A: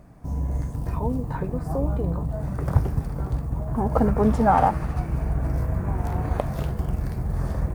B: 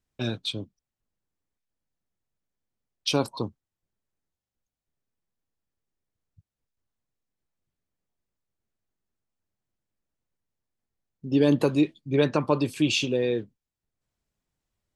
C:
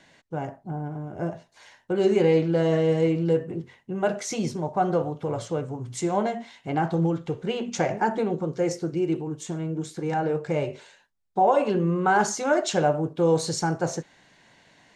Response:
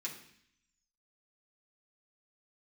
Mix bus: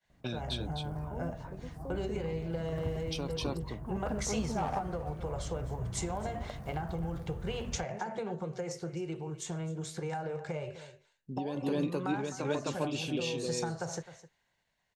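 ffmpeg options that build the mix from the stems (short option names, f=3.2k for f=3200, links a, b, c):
-filter_complex "[0:a]volume=12.5dB,asoftclip=hard,volume=-12.5dB,adelay=100,volume=-16dB[a];[1:a]adelay=50,volume=-2.5dB,asplit=2[b][c];[c]volume=-10dB[d];[2:a]agate=range=-33dB:threshold=-44dB:ratio=3:detection=peak,equalizer=f=280:w=2.3:g=-15,acrossover=split=240[e][f];[f]acompressor=threshold=-27dB:ratio=6[g];[e][g]amix=inputs=2:normalize=0,volume=0dB,asplit=2[h][i];[i]volume=-21.5dB[j];[b][h]amix=inputs=2:normalize=0,tremolo=f=0.5:d=0.34,acompressor=threshold=-33dB:ratio=10,volume=0dB[k];[d][j]amix=inputs=2:normalize=0,aecho=0:1:258:1[l];[a][k][l]amix=inputs=3:normalize=0"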